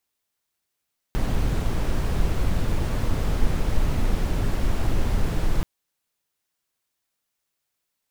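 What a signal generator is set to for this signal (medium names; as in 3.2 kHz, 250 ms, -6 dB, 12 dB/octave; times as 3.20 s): noise brown, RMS -20.5 dBFS 4.48 s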